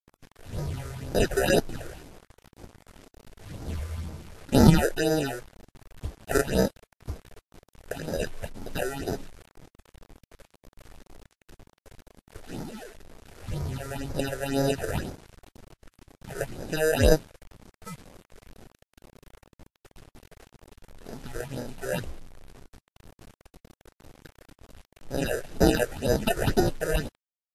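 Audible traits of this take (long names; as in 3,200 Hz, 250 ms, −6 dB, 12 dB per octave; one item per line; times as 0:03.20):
aliases and images of a low sample rate 1,100 Hz, jitter 0%
phaser sweep stages 6, 2 Hz, lowest notch 210–2,900 Hz
a quantiser's noise floor 8 bits, dither none
Ogg Vorbis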